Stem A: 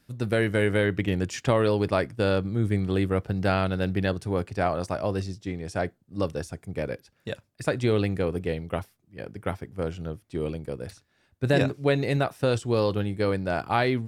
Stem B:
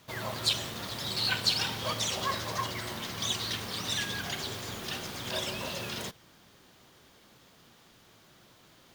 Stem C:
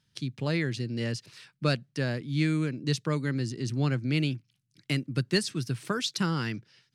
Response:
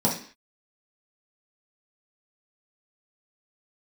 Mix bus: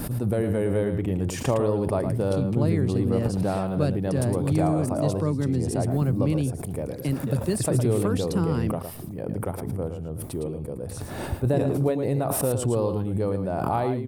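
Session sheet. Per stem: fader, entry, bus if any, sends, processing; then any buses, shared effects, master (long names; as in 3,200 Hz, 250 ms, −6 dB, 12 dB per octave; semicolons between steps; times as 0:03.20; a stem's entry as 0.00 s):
−1.5 dB, 0.00 s, no send, echo send −8 dB, background raised ahead of every attack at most 22 dB per second
muted
+0.5 dB, 2.15 s, no send, no echo send, envelope flattener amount 50%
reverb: not used
echo: single-tap delay 111 ms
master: flat-topped bell 3,100 Hz −13.5 dB 2.6 octaves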